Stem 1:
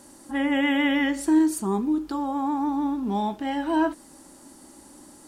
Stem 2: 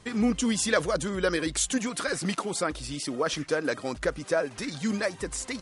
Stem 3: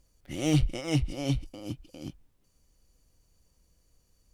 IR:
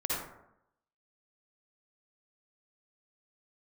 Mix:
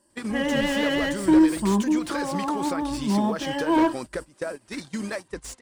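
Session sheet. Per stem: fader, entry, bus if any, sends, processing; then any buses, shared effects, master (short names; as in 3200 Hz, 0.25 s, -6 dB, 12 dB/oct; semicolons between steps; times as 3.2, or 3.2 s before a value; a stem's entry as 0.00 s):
0.0 dB, 0.00 s, no send, ripple EQ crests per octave 1.3, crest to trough 12 dB
+2.0 dB, 0.10 s, no send, compressor 8:1, threshold -29 dBFS, peak gain reduction 11 dB
-9.0 dB, 0.00 s, no send, ensemble effect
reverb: off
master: gate -32 dBFS, range -18 dB; slew limiter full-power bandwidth 110 Hz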